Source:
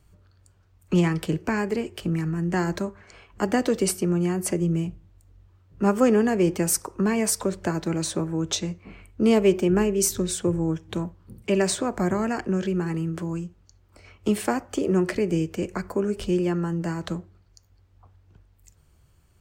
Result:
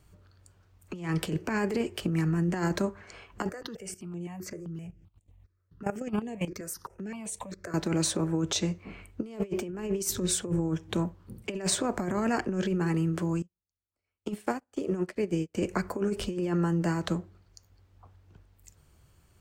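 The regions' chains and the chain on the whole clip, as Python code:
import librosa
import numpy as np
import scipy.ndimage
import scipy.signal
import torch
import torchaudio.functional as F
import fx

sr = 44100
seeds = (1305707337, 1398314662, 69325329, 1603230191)

y = fx.chain(x, sr, fx.level_steps(step_db=18),
    fx.phaser_held(hz=7.7, low_hz=850.0, high_hz=5000.0), at=(3.49, 7.74))
y = fx.chain(y, sr, fx.echo_feedback(ms=67, feedback_pct=48, wet_db=-20.5),
    fx.upward_expand(threshold_db=-43.0, expansion=2.5), at=(13.42, 15.55))
y = fx.low_shelf(y, sr, hz=86.0, db=-5.0)
y = fx.over_compress(y, sr, threshold_db=-26.0, ratio=-0.5)
y = F.gain(torch.from_numpy(y), -1.5).numpy()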